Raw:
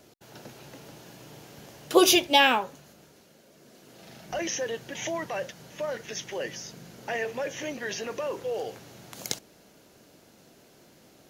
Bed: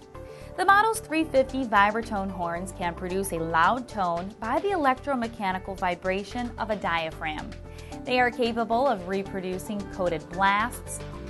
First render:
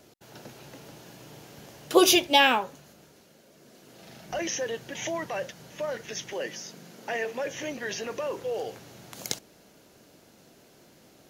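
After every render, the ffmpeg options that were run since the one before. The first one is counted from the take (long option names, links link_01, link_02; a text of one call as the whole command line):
ffmpeg -i in.wav -filter_complex "[0:a]asettb=1/sr,asplit=3[link_01][link_02][link_03];[link_01]atrim=end=6.334[link_04];[link_02]atrim=start=6.33:end=7.46,asetpts=PTS-STARTPTS,afade=type=in:duration=0.004:curve=qsin,afade=type=out:start_time=1.126:duration=0.004:curve=qsin,highpass=frequency=160:width=0.5412,highpass=frequency=160:width=1.3066[link_05];[link_03]atrim=start=7.456[link_06];[link_04][link_05]acrossfade=duration=0.004:curve1=hsin:curve2=qsin[link_07];[link_07][link_06]acrossfade=duration=0.004:curve1=qsin:curve2=hsin" out.wav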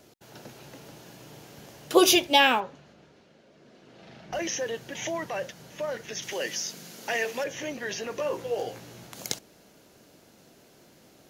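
ffmpeg -i in.wav -filter_complex "[0:a]asettb=1/sr,asplit=3[link_01][link_02][link_03];[link_01]atrim=end=2.604[link_04];[link_02]atrim=start=2.6:end=4.33,asetpts=PTS-STARTPTS,afade=type=in:duration=0.004:curve=qsin,afade=type=out:start_time=1.726:duration=0.004:curve=qsin,lowpass=3800[link_05];[link_03]atrim=start=4.326[link_06];[link_04][link_05]acrossfade=duration=0.004:curve1=hsin:curve2=qsin[link_07];[link_07][link_06]acrossfade=duration=0.004:curve1=qsin:curve2=hsin,asettb=1/sr,asplit=3[link_08][link_09][link_10];[link_08]atrim=end=6.224[link_11];[link_09]atrim=start=6.22:end=7.44,asetpts=PTS-STARTPTS,afade=type=in:duration=0.004:curve=qsin,afade=type=out:start_time=1.216:duration=0.004:curve=qsin,highshelf=frequency=2300:gain=10[link_12];[link_10]atrim=start=7.436[link_13];[link_11][link_12]acrossfade=duration=0.004:curve1=hsin:curve2=qsin[link_14];[link_14][link_13]acrossfade=duration=0.004:curve1=qsin:curve2=hsin,asettb=1/sr,asplit=3[link_15][link_16][link_17];[link_15]atrim=end=8.174[link_18];[link_16]atrim=start=8.17:end=9.07,asetpts=PTS-STARTPTS,afade=type=in:duration=0.004:curve=qsin,afade=type=out:start_time=0.896:duration=0.004:curve=qsin,asplit=2[link_19][link_20];[link_20]adelay=17,volume=-3dB[link_21];[link_19][link_21]amix=inputs=2:normalize=0,atrim=end_sample=39690[link_22];[link_17]atrim=start=9.066[link_23];[link_18][link_22]acrossfade=duration=0.004:curve1=hsin:curve2=qsin[link_24];[link_24][link_23]acrossfade=duration=0.004:curve1=qsin:curve2=hsin" out.wav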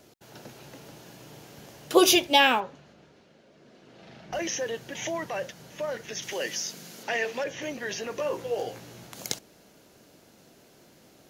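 ffmpeg -i in.wav -filter_complex "[0:a]asettb=1/sr,asplit=3[link_01][link_02][link_03];[link_01]atrim=end=7.034[link_04];[link_02]atrim=start=7.03:end=7.62,asetpts=PTS-STARTPTS,afade=type=in:duration=0.004:curve=qsin,afade=type=out:start_time=0.586:duration=0.004:curve=qsin,acrossover=split=6000[link_05][link_06];[link_06]acompressor=threshold=-58dB:ratio=4:attack=1:release=60[link_07];[link_05][link_07]amix=inputs=2:normalize=0[link_08];[link_03]atrim=start=7.616[link_09];[link_04][link_08]acrossfade=duration=0.004:curve1=hsin:curve2=qsin[link_10];[link_10][link_09]acrossfade=duration=0.004:curve1=qsin:curve2=hsin" out.wav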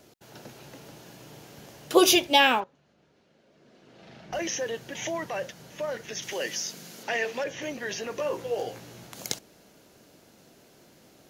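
ffmpeg -i in.wav -filter_complex "[0:a]asplit=2[link_01][link_02];[link_01]atrim=end=2.64,asetpts=PTS-STARTPTS,afade=type=out:start_time=2.636:duration=0.004:curve=hsin:silence=0.141254[link_03];[link_02]atrim=start=2.64,asetpts=PTS-STARTPTS,afade=type=in:duration=1.55:silence=0.141254[link_04];[link_03][link_04]concat=n=2:v=0:a=1" out.wav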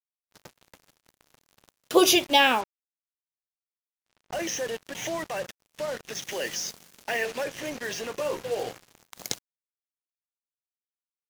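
ffmpeg -i in.wav -af "acrusher=bits=5:mix=0:aa=0.5" out.wav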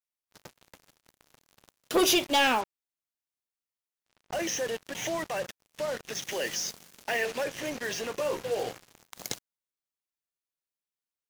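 ffmpeg -i in.wav -af "asoftclip=type=tanh:threshold=-18dB" out.wav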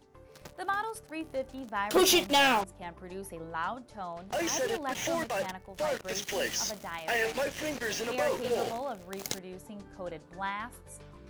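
ffmpeg -i in.wav -i bed.wav -filter_complex "[1:a]volume=-13dB[link_01];[0:a][link_01]amix=inputs=2:normalize=0" out.wav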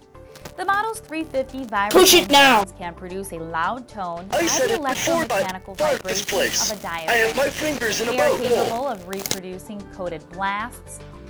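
ffmpeg -i in.wav -af "volume=11dB" out.wav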